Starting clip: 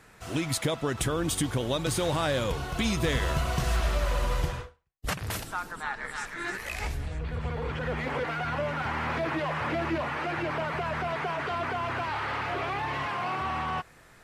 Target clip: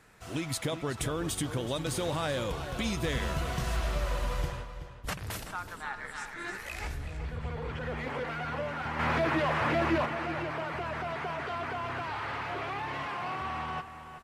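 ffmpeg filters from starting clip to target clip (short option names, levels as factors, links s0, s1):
-filter_complex "[0:a]asettb=1/sr,asplit=3[s0][s1][s2];[s0]atrim=end=8.994[s3];[s1]atrim=start=8.99:end=10.06,asetpts=PTS-STARTPTS,afade=t=in:d=0.004:c=qsin,afade=t=out:st=1.066:d=0.004:c=qsin,acontrast=63[s4];[s2]atrim=start=10.056[s5];[s3][s4]acrossfade=d=0.004:c1=hsin:c2=qsin[s6];[s6][s5]acrossfade=d=0.004:c1=qsin:c2=hsin,asplit=2[s7][s8];[s8]adelay=377,lowpass=f=4200:p=1,volume=0.299,asplit=2[s9][s10];[s10]adelay=377,lowpass=f=4200:p=1,volume=0.29,asplit=2[s11][s12];[s12]adelay=377,lowpass=f=4200:p=1,volume=0.29[s13];[s7][s9][s11][s13]amix=inputs=4:normalize=0,volume=0.596"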